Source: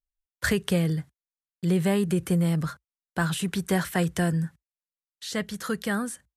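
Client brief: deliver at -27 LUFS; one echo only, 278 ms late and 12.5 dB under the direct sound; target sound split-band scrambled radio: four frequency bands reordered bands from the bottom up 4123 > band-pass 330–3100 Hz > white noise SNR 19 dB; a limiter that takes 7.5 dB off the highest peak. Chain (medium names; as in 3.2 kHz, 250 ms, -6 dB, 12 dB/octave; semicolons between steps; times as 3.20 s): peak limiter -18 dBFS; delay 278 ms -12.5 dB; four frequency bands reordered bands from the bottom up 4123; band-pass 330–3100 Hz; white noise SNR 19 dB; trim +0.5 dB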